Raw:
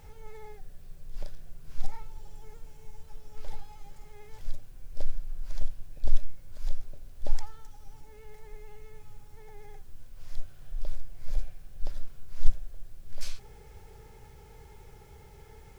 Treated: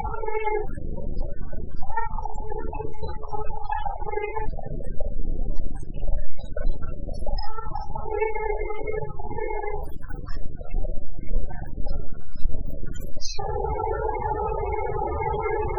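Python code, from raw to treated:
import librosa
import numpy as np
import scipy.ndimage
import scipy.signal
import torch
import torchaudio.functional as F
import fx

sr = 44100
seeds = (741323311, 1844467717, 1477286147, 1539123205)

y = x + 0.5 * 10.0 ** (-28.0 / 20.0) * np.sign(x)
y = fx.low_shelf(y, sr, hz=290.0, db=-11.5)
y = fx.leveller(y, sr, passes=2)
y = fx.room_early_taps(y, sr, ms=(41, 55, 69), db=(-5.5, -11.5, -8.5))
y = fx.spec_topn(y, sr, count=16)
y = y * 10.0 ** (7.5 / 20.0)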